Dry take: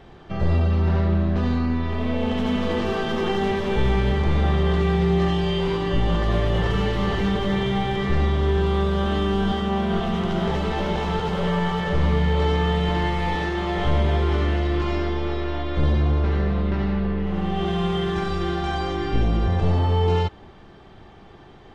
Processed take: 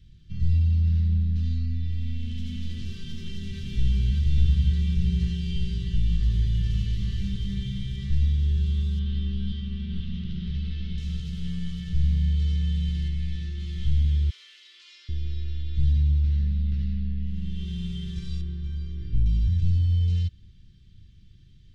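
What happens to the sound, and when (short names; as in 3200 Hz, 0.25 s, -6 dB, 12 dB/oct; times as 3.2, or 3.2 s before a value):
2.94–4.12 echo throw 0.59 s, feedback 80%, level -3.5 dB
8.99–10.98 LPF 4500 Hz 24 dB/oct
13.08–13.6 high shelf 5300 Hz -7.5 dB
14.3–15.09 steep high-pass 590 Hz
18.41–19.26 LPF 1100 Hz 6 dB/oct
whole clip: Chebyshev band-stop 130–4100 Hz, order 2; low shelf 130 Hz +7.5 dB; gain -6 dB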